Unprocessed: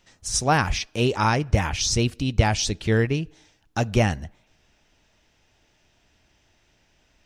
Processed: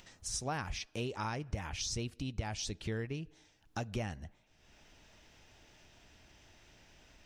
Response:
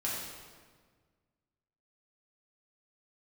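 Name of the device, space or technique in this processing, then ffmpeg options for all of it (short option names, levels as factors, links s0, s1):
upward and downward compression: -af "acompressor=mode=upward:threshold=0.00891:ratio=2.5,acompressor=threshold=0.0398:ratio=3,volume=0.376"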